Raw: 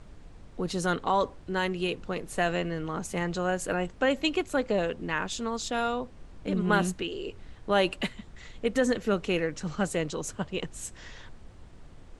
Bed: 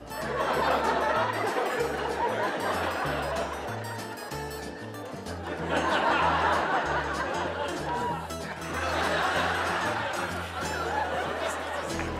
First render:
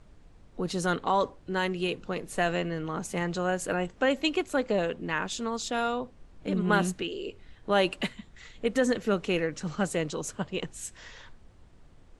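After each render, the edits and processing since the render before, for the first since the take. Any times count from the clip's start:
noise reduction from a noise print 6 dB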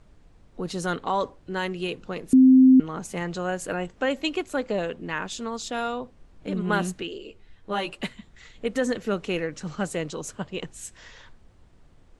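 0:02.33–0:02.80: beep over 260 Hz −10 dBFS
0:07.18–0:08.03: string-ensemble chorus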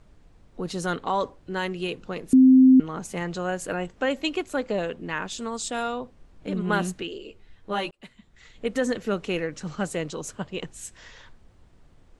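0:05.38–0:05.83: parametric band 8,300 Hz +14 dB 0.27 octaves
0:07.91–0:08.66: fade in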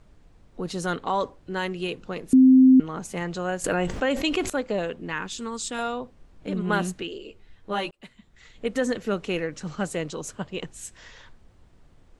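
0:03.64–0:04.50: envelope flattener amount 70%
0:05.12–0:05.79: parametric band 650 Hz −12 dB 0.39 octaves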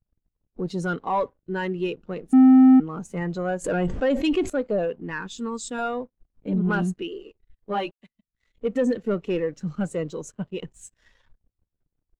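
leveller curve on the samples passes 3
every bin expanded away from the loudest bin 1.5 to 1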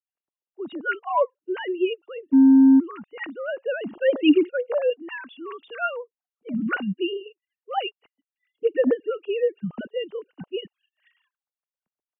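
three sine waves on the formant tracks
hollow resonant body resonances 2,800 Hz, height 16 dB, ringing for 30 ms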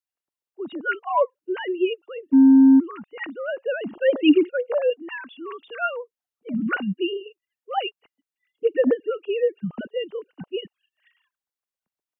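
level +1 dB

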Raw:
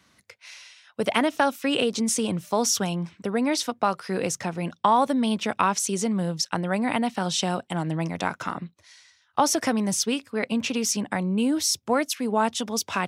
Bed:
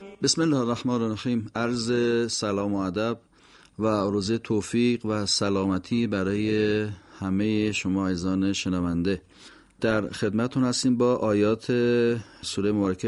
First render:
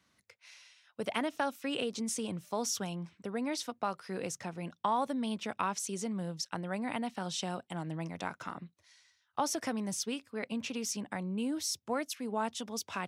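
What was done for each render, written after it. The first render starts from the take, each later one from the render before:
level −11 dB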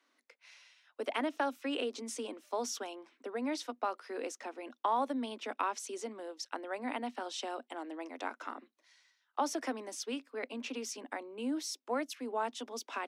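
Butterworth high-pass 240 Hz 96 dB per octave
high-shelf EQ 5,300 Hz −9.5 dB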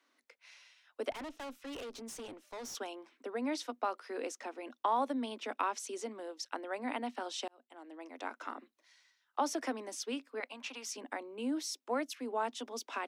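0:01.11–0:02.75: tube saturation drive 41 dB, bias 0.6
0:07.48–0:08.49: fade in
0:10.40–0:10.93: low shelf with overshoot 580 Hz −10.5 dB, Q 1.5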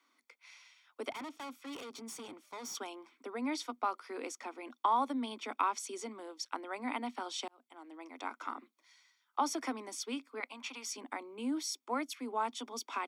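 high-pass filter 190 Hz
comb filter 0.9 ms, depth 49%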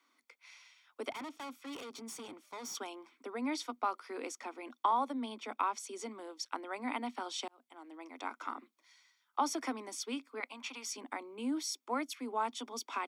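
0:04.91–0:06.00: Chebyshev high-pass with heavy ripple 150 Hz, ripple 3 dB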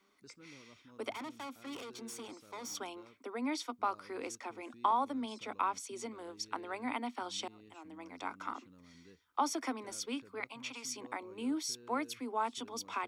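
mix in bed −34 dB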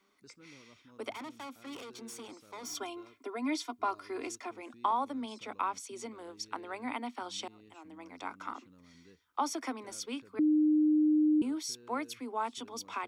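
0:02.63–0:04.51: comb filter 2.9 ms, depth 80%
0:10.39–0:11.42: beep over 305 Hz −22.5 dBFS

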